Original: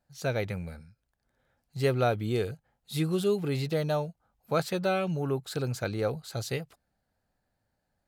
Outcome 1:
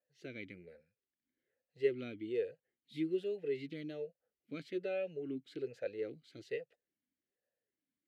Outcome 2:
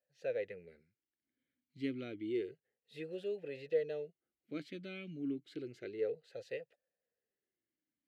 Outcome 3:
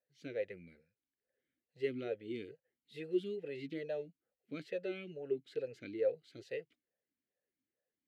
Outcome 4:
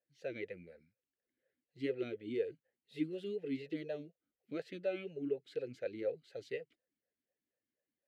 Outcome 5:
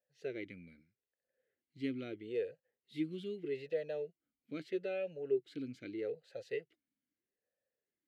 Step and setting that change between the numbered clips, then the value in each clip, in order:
vowel sweep, rate: 1.2, 0.3, 2.3, 4.1, 0.79 Hz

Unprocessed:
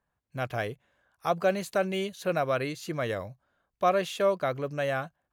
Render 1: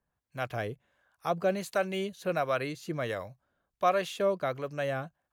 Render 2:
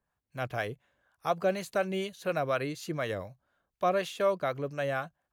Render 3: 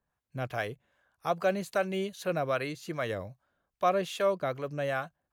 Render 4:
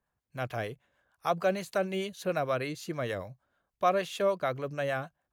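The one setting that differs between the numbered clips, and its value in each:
harmonic tremolo, rate: 1.4, 4.1, 2.5, 6.6 Hz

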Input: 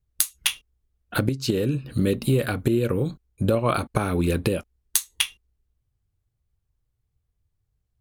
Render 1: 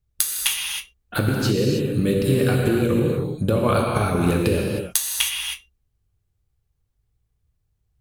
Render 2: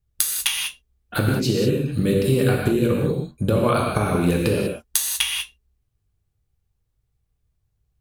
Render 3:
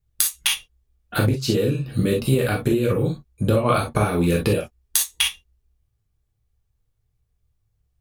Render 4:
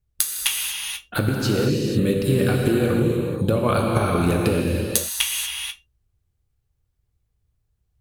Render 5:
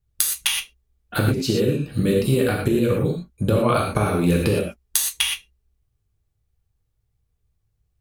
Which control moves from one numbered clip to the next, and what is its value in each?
non-linear reverb, gate: 340, 220, 80, 510, 140 ms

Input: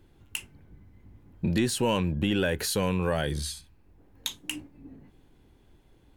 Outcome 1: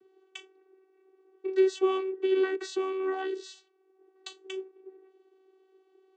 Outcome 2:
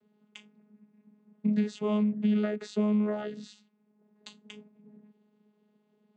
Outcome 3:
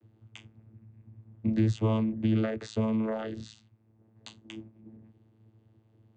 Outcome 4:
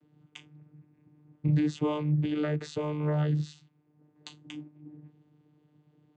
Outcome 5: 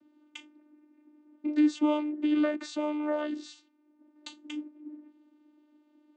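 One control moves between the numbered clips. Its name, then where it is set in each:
vocoder, frequency: 380, 210, 110, 150, 300 Hz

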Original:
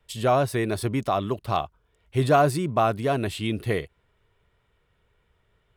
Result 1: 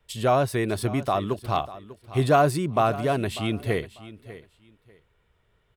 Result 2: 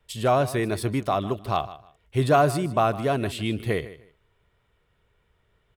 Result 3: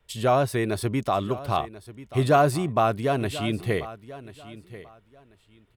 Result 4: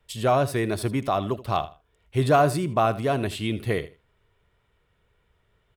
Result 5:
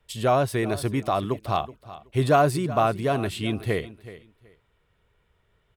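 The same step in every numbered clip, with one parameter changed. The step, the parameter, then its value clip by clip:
feedback echo, time: 595, 154, 1038, 79, 375 ms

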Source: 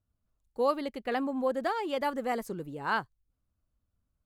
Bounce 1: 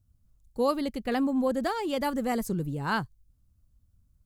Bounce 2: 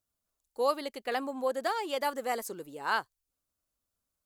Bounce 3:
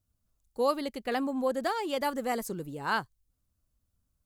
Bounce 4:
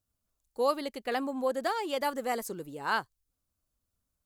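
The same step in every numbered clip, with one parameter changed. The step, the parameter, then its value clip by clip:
tone controls, bass: +15, -15, +2, -6 dB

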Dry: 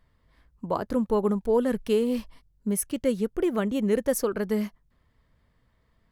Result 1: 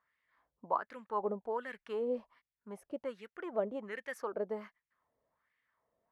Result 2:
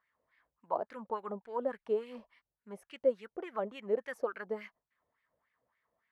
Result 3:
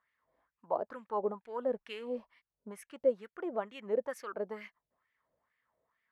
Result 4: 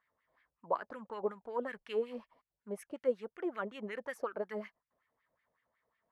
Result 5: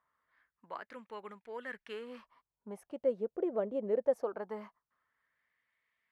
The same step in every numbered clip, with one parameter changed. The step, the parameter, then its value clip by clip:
wah, rate: 1.3, 3.5, 2.2, 5.4, 0.21 Hz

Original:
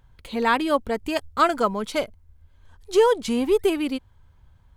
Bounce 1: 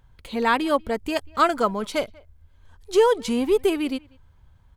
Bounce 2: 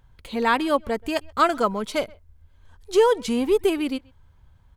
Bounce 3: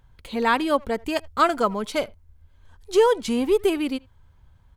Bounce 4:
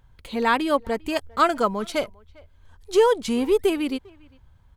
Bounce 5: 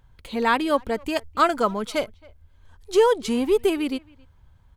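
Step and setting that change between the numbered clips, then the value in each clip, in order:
speakerphone echo, time: 190, 130, 80, 400, 270 ms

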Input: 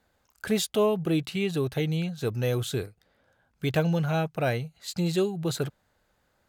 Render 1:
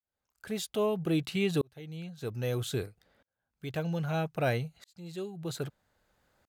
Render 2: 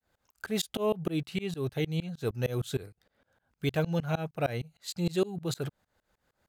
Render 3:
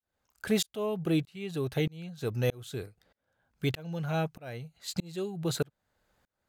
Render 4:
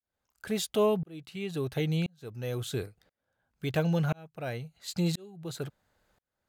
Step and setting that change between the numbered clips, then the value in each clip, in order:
tremolo, rate: 0.62, 6.5, 1.6, 0.97 Hz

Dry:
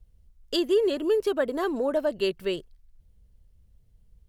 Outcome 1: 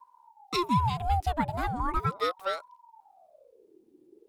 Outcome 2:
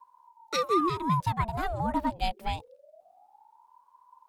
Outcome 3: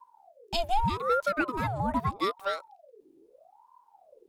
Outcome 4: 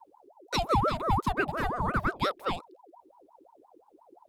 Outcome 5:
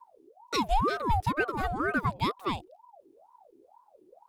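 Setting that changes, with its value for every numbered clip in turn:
ring modulator with a swept carrier, at: 0.38, 0.25, 0.8, 5.7, 2.1 Hz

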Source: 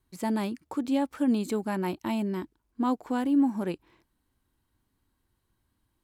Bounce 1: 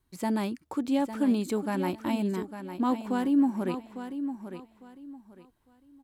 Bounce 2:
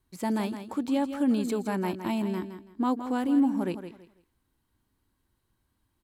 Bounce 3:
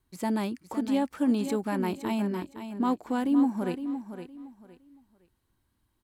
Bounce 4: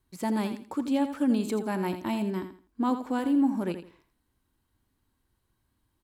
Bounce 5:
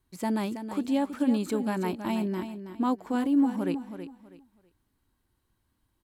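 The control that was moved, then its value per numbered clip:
feedback echo, time: 853, 165, 513, 83, 324 ms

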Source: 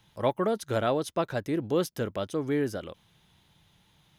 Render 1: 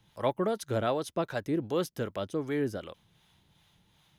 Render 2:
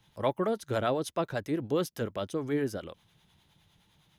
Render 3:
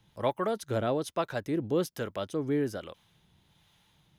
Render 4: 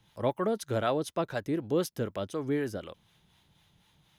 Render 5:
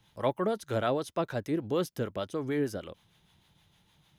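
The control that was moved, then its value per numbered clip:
harmonic tremolo, rate: 2.6, 9.8, 1.2, 4, 6.5 Hz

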